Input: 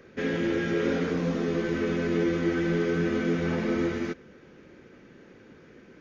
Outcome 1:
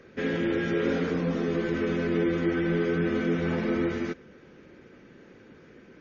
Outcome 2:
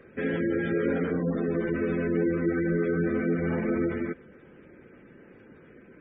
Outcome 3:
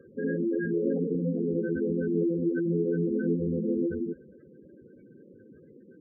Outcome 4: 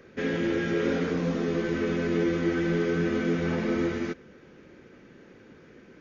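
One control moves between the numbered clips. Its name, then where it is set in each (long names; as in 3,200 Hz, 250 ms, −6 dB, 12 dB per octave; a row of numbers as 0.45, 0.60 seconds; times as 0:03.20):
gate on every frequency bin, under each frame's peak: −40, −25, −10, −60 decibels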